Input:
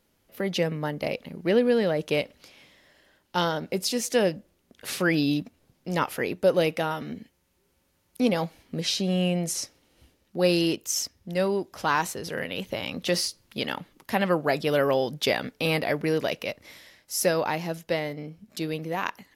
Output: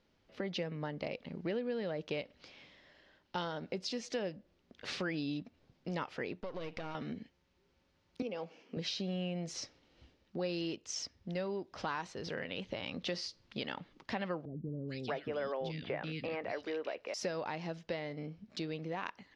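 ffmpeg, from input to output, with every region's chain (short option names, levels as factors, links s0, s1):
-filter_complex "[0:a]asettb=1/sr,asplit=3[s0][s1][s2];[s0]atrim=end=6.404[s3];[s1]atrim=start=6.4:end=6.95,asetpts=PTS-STARTPTS,afade=t=in:d=0.004:c=qsin,afade=t=out:st=0.546:d=0.004:c=qsin,aeval=exprs='if(lt(val(0),0),0.251*val(0),val(0))':c=same,acompressor=threshold=0.0282:ratio=4:attack=3.2:release=140:knee=1:detection=peak[s4];[s2]atrim=start=6.946[s5];[s3][s4]acrossfade=d=0.004:c1=hsin:c2=qsin[s6];[s6][s5]acrossfade=d=0.004:c1=qsin:c2=hsin,asettb=1/sr,asplit=3[s7][s8][s9];[s7]atrim=end=8.224[s10];[s8]atrim=start=8.22:end=8.77,asetpts=PTS-STARTPTS,afade=t=in:d=0.004:c=qsin,afade=t=out:st=0.546:d=0.004:c=qsin,acompressor=threshold=0.0158:ratio=2:attack=3.2:release=140:knee=1:detection=peak,highpass=f=190:w=0.5412,highpass=f=190:w=1.3066,equalizer=f=460:t=q:w=4:g=9,equalizer=f=1900:t=q:w=4:g=-4,equalizer=f=2700:t=q:w=4:g=8,equalizer=f=3900:t=q:w=4:g=-10,equalizer=f=5800:t=q:w=4:g=4,lowpass=f=8300:w=0.5412,lowpass=f=8300:w=1.3066[s11];[s9]atrim=start=8.766[s12];[s10][s11]acrossfade=d=0.004:c1=hsin:c2=qsin[s13];[s13][s12]acrossfade=d=0.004:c1=qsin:c2=hsin,asettb=1/sr,asplit=3[s14][s15][s16];[s14]atrim=end=14.454[s17];[s15]atrim=start=14.45:end=17.14,asetpts=PTS-STARTPTS,afade=t=in:d=0.004:c=qsin,afade=t=out:st=2.686:d=0.004:c=qsin,acrossover=split=2900[s18][s19];[s19]acompressor=threshold=0.01:ratio=4:attack=1:release=60[s20];[s18][s20]amix=inputs=2:normalize=0,acrossover=split=300|2600[s21][s22][s23];[s23]adelay=430[s24];[s22]adelay=630[s25];[s21][s25][s24]amix=inputs=3:normalize=0,atrim=end_sample=118629[s26];[s16]atrim=start=17.136[s27];[s17][s26]acrossfade=d=0.004:c1=hsin:c2=qsin[s28];[s28][s27]acrossfade=d=0.004:c1=qsin:c2=hsin,lowpass=f=5300:w=0.5412,lowpass=f=5300:w=1.3066,acompressor=threshold=0.02:ratio=3,volume=0.668"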